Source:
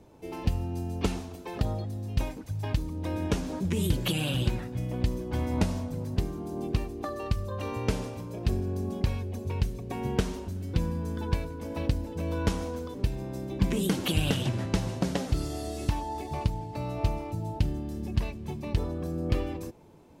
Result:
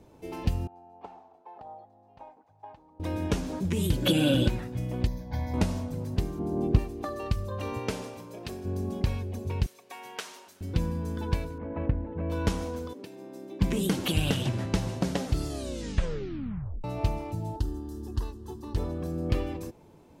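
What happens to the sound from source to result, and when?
0:00.67–0:03.00: resonant band-pass 810 Hz, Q 5.5
0:04.02–0:04.48: hollow resonant body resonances 290/530/1,500/3,400 Hz, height 14 dB
0:05.07–0:05.54: phaser with its sweep stopped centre 1,900 Hz, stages 8
0:06.39–0:06.79: tilt shelving filter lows +6 dB, about 1,400 Hz
0:07.78–0:08.64: high-pass filter 220 Hz → 610 Hz 6 dB per octave
0:09.66–0:10.61: high-pass filter 970 Hz
0:11.58–0:12.30: low-pass filter 2,000 Hz 24 dB per octave
0:12.93–0:13.61: four-pole ladder high-pass 220 Hz, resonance 30%
0:15.48: tape stop 1.36 s
0:17.56–0:18.76: phaser with its sweep stopped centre 620 Hz, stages 6

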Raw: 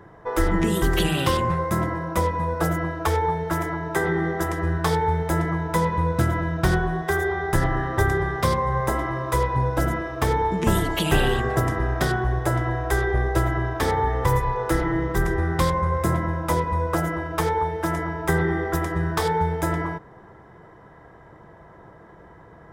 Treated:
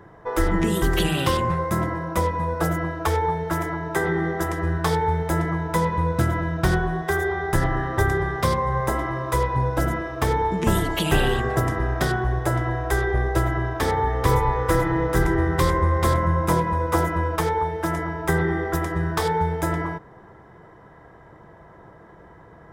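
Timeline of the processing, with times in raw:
0:13.80–0:17.36: single-tap delay 437 ms −3 dB

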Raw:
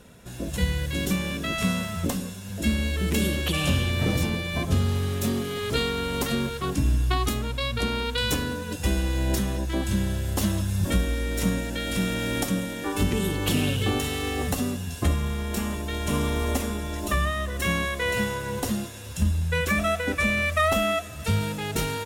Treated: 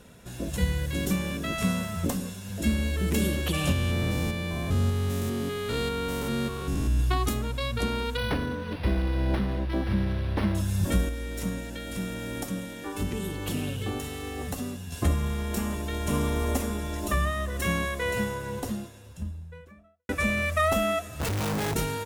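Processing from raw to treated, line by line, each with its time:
0:03.72–0:07.00: spectrum averaged block by block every 200 ms
0:08.17–0:10.55: linearly interpolated sample-rate reduction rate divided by 6×
0:11.09–0:14.92: clip gain −5.5 dB
0:17.83–0:20.09: fade out and dull
0:21.20–0:21.74: comparator with hysteresis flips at −40 dBFS
whole clip: dynamic equaliser 3,300 Hz, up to −4 dB, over −41 dBFS, Q 0.8; level −1 dB

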